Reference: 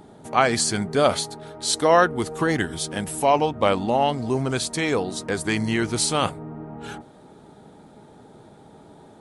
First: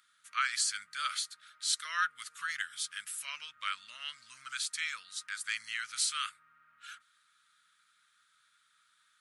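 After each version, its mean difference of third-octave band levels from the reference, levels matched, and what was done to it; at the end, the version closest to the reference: 16.5 dB: elliptic high-pass 1.3 kHz, stop band 40 dB; trim -7 dB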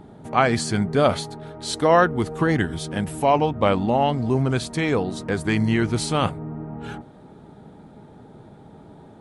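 2.5 dB: tone controls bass +6 dB, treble -8 dB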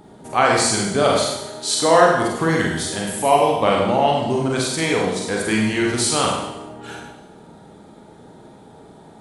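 4.5 dB: Schroeder reverb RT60 0.91 s, combs from 33 ms, DRR -2 dB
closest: second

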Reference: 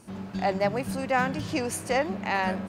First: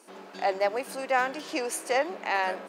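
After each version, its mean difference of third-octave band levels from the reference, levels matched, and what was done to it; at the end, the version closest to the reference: 5.5 dB: high-pass 330 Hz 24 dB/octave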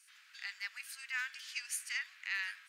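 20.5 dB: steep high-pass 1.6 kHz 36 dB/octave; trim -5 dB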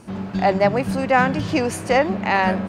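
2.0 dB: treble shelf 6.5 kHz -11 dB; trim +8.5 dB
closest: third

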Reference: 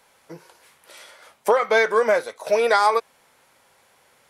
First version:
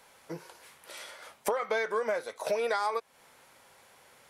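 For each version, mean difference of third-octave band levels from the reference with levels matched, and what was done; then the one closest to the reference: 5.0 dB: compression 4:1, threshold -29 dBFS, peak gain reduction 13.5 dB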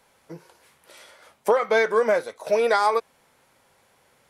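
1.5 dB: bass shelf 400 Hz +7 dB; trim -4 dB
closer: second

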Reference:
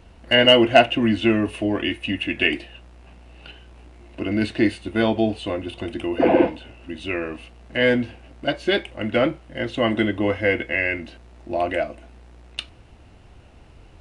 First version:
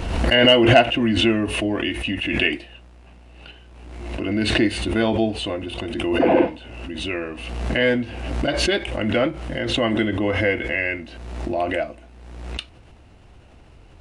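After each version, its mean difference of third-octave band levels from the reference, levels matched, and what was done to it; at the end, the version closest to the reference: 4.0 dB: swell ahead of each attack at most 39 dB/s; trim -1 dB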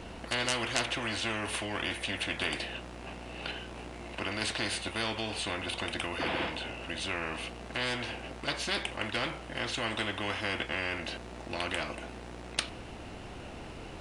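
13.0 dB: spectrum-flattening compressor 4:1; trim -8.5 dB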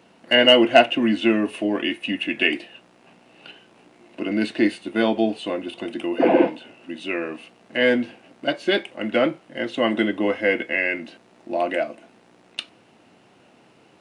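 1.5 dB: high-pass 170 Hz 24 dB/octave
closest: third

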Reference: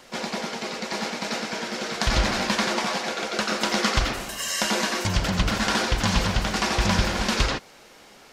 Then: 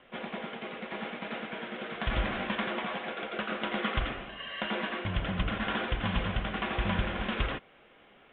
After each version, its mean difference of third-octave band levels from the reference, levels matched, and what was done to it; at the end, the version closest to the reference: 9.0 dB: steep low-pass 3.5 kHz 96 dB/octave; band-stop 900 Hz, Q 10; trim -7.5 dB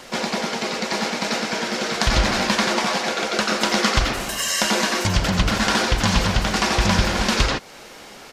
1.0 dB: in parallel at +2 dB: compression, threshold -33 dBFS, peak gain reduction 16 dB; on the sum: resampled via 32 kHz; trim +1.5 dB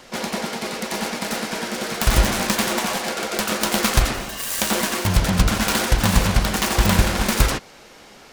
3.0 dB: self-modulated delay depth 0.52 ms; bass shelf 210 Hz +3.5 dB; trim +4 dB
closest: second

